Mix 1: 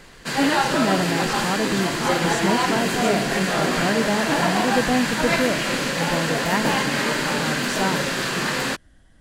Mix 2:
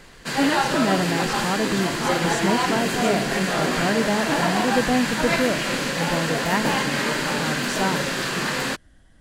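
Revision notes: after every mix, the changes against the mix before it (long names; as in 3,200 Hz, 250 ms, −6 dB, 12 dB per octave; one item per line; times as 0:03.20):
background: send −9.5 dB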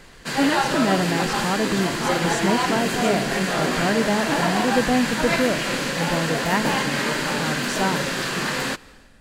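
speech: send on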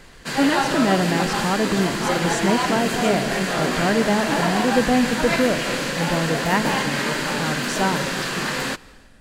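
speech: send +10.5 dB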